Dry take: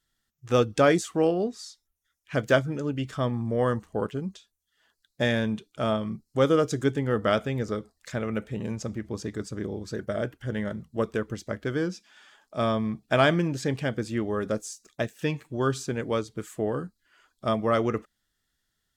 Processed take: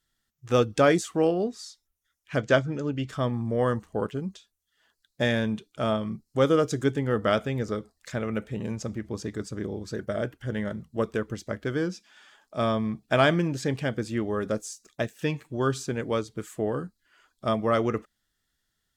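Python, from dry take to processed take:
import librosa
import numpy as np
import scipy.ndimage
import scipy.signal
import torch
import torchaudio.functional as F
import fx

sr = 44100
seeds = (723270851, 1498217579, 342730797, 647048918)

y = fx.lowpass(x, sr, hz=7600.0, slope=24, at=(2.38, 3.09))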